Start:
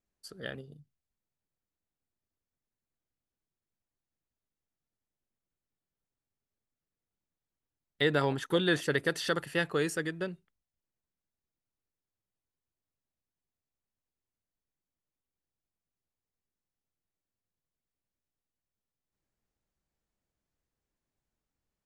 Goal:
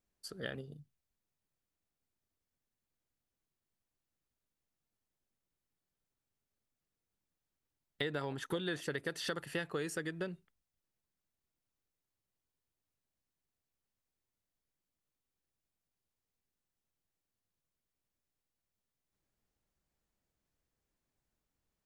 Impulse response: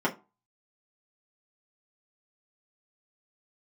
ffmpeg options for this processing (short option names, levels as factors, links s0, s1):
-af "acompressor=threshold=0.0158:ratio=5,volume=1.12"